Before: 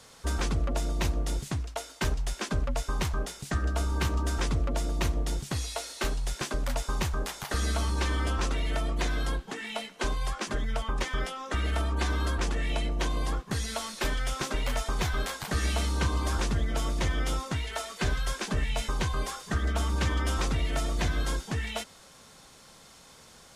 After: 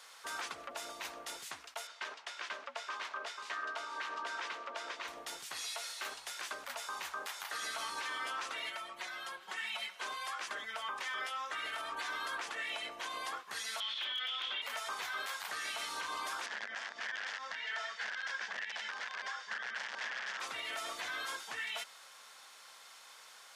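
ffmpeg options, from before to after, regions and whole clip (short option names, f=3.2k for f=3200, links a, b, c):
-filter_complex "[0:a]asettb=1/sr,asplit=3[a][b][c];[a]atrim=end=1.874[d];[b]atrim=start=1.87:end=5.08,asetpts=PTS-STARTPTS,afade=t=in:d=0.004:c=qsin,afade=t=out:st=3.206:d=0.004:c=qsin,highpass=300,lowpass=4.8k,bandreject=f=780:w=22,aecho=1:1:489:0.422,atrim=end_sample=141561[e];[c]atrim=start=5.076[f];[d][e]acrossfade=d=0.004:c1=hsin:c2=qsin[g];[g][f]acrossfade=d=0.004:c1=qsin:c2=hsin,asettb=1/sr,asplit=3[h][i][j];[h]atrim=end=8.694[k];[i]atrim=start=8.69:end=9.99,asetpts=PTS-STARTPTS,afade=t=in:d=0.004:c=qsin,afade=t=out:st=1.296:d=0.004:c=qsin,acompressor=threshold=-33dB:ratio=5:attack=3.2:release=140:knee=1:detection=peak,aecho=1:1:5.4:0.67,atrim=end_sample=57330[l];[j]atrim=start=9.986[m];[k][l]acrossfade=d=0.004:c1=hsin:c2=qsin[n];[n][m]acrossfade=d=0.004:c1=qsin:c2=hsin,asettb=1/sr,asplit=3[o][p][q];[o]atrim=end=13.804[r];[p]atrim=start=13.8:end=14.62,asetpts=PTS-STARTPTS,afade=t=in:d=0.004:c=qsin,afade=t=out:st=0.816:d=0.004:c=qsin,lowpass=f=3.3k:t=q:w=11,aeval=exprs='clip(val(0),-1,0.141)':c=same,afreqshift=-22[s];[q]atrim=start=14.616[t];[r][s]acrossfade=d=0.004:c1=hsin:c2=qsin[u];[u][t]acrossfade=d=0.004:c1=qsin:c2=hsin,asettb=1/sr,asplit=3[v][w][x];[v]atrim=end=16.464[y];[w]atrim=start=16.46:end=20.4,asetpts=PTS-STARTPTS,afade=t=in:d=0.004:c=qsin,afade=t=out:st=3.936:d=0.004:c=qsin,aeval=exprs='(mod(13.3*val(0)+1,2)-1)/13.3':c=same,highpass=180,equalizer=f=210:t=q:w=4:g=7,equalizer=f=330:t=q:w=4:g=-8,equalizer=f=1.2k:t=q:w=4:g=-5,equalizer=f=1.7k:t=q:w=4:g=9,equalizer=f=2.5k:t=q:w=4:g=-3,equalizer=f=4k:t=q:w=4:g=-5,lowpass=f=5.6k:w=0.5412,lowpass=f=5.6k:w=1.3066[z];[x]atrim=start=20.396[aa];[y][z]acrossfade=d=0.004:c1=hsin:c2=qsin[ab];[ab][aa]acrossfade=d=0.004:c1=qsin:c2=hsin,highpass=1.1k,equalizer=f=7.8k:w=0.53:g=-7,alimiter=level_in=9dB:limit=-24dB:level=0:latency=1:release=80,volume=-9dB,volume=3dB"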